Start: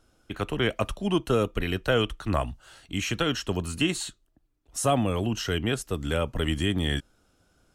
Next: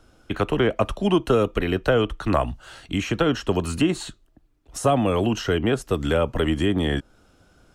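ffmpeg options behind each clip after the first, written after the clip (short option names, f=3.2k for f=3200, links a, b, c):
-filter_complex "[0:a]highshelf=f=5.8k:g=-7.5,acrossover=split=250|1300[a][b][c];[a]acompressor=threshold=-35dB:ratio=4[d];[b]acompressor=threshold=-26dB:ratio=4[e];[c]acompressor=threshold=-41dB:ratio=4[f];[d][e][f]amix=inputs=3:normalize=0,volume=9dB"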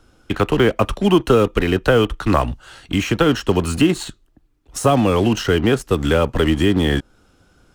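-filter_complex "[0:a]equalizer=f=640:t=o:w=0.28:g=-5.5,asplit=2[a][b];[b]acrusher=bits=4:mix=0:aa=0.5,volume=-5.5dB[c];[a][c]amix=inputs=2:normalize=0,volume=2dB"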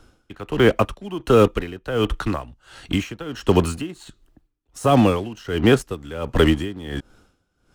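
-af "aeval=exprs='val(0)*pow(10,-20*(0.5-0.5*cos(2*PI*1.4*n/s))/20)':c=same,volume=2dB"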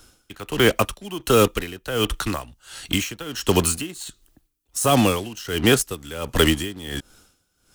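-af "crystalizer=i=5:c=0,volume=-3dB"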